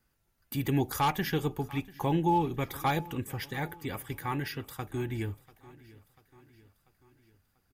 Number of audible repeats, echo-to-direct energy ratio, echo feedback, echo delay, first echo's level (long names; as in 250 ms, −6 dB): 3, −19.5 dB, 55%, 691 ms, −21.0 dB